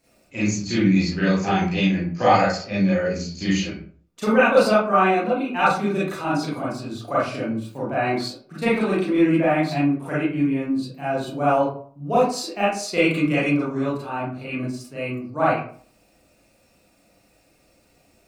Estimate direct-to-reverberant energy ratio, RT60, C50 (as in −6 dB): −10.0 dB, 0.50 s, 1.0 dB